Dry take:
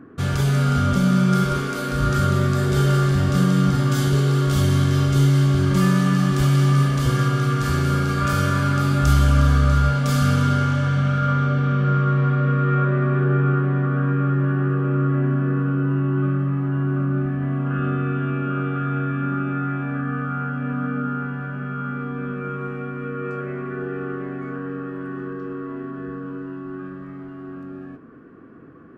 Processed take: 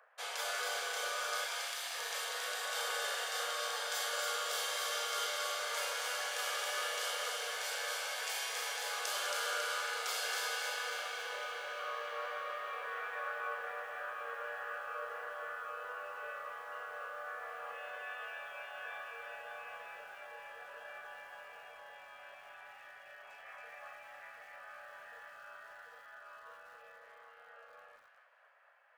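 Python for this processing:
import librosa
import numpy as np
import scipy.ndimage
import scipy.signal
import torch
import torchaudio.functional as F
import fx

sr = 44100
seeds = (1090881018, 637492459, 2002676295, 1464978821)

y = fx.spec_gate(x, sr, threshold_db=-20, keep='weak')
y = scipy.signal.sosfilt(scipy.signal.butter(16, 440.0, 'highpass', fs=sr, output='sos'), y)
y = fx.over_compress(y, sr, threshold_db=-31.0, ratio=-1.0)
y = fx.doubler(y, sr, ms=37.0, db=-8.5)
y = fx.echo_wet_highpass(y, sr, ms=274, feedback_pct=55, hz=1700.0, wet_db=-3.0)
y = fx.echo_crushed(y, sr, ms=202, feedback_pct=55, bits=8, wet_db=-11.0)
y = y * librosa.db_to_amplitude(-7.0)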